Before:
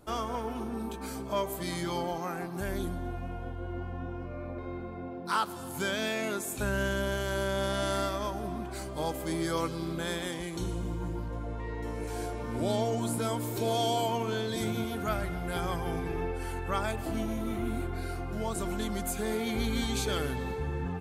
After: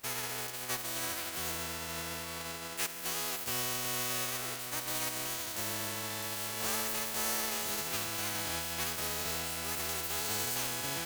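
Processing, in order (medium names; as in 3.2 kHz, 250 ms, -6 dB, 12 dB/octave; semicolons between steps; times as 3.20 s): spectral contrast reduction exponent 0.23; wide varispeed 1.9×; in parallel at -6 dB: wavefolder -31 dBFS; on the sum: trim -4.5 dB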